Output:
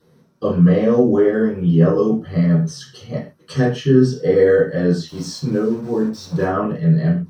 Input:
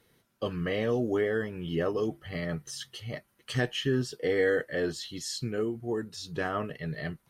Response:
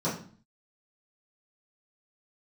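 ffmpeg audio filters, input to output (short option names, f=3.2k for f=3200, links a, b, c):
-filter_complex "[0:a]acontrast=32,asplit=3[a][b][c];[a]afade=t=out:st=5.07:d=0.02[d];[b]aeval=exprs='val(0)*gte(abs(val(0)),0.0141)':c=same,afade=t=in:st=5.07:d=0.02,afade=t=out:st=6.44:d=0.02[e];[c]afade=t=in:st=6.44:d=0.02[f];[d][e][f]amix=inputs=3:normalize=0[g];[1:a]atrim=start_sample=2205,atrim=end_sample=6615[h];[g][h]afir=irnorm=-1:irlink=0,volume=-6.5dB"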